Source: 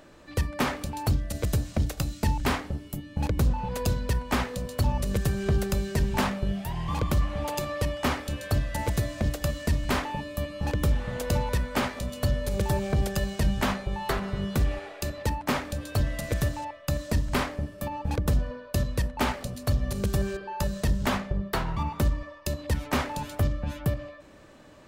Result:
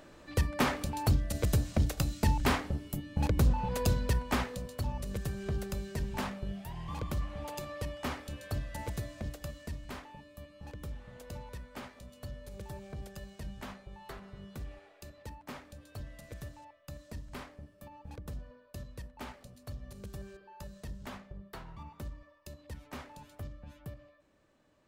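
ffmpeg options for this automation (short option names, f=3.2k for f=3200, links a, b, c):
-af "volume=-2dB,afade=t=out:st=4.02:d=0.79:silence=0.398107,afade=t=out:st=8.82:d=1.19:silence=0.398107"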